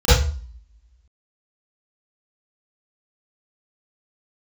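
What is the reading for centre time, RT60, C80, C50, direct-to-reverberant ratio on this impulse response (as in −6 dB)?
65 ms, 0.40 s, 6.5 dB, −4.0 dB, −18.5 dB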